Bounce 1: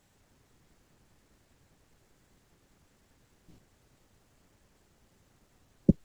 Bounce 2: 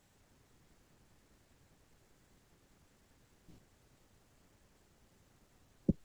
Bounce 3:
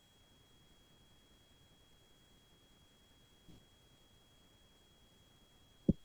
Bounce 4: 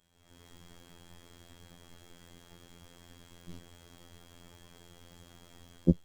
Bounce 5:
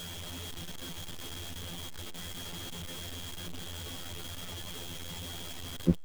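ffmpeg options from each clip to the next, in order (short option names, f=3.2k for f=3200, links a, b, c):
-af "alimiter=limit=-16dB:level=0:latency=1:release=69,volume=-2dB"
-af "aeval=exprs='val(0)+0.000316*sin(2*PI*3300*n/s)':c=same"
-af "dynaudnorm=f=120:g=5:m=16.5dB,afftfilt=real='hypot(re,im)*cos(PI*b)':imag='0':win_size=2048:overlap=0.75,volume=-1dB"
-af "aeval=exprs='val(0)+0.5*0.0211*sgn(val(0))':c=same,volume=-2dB"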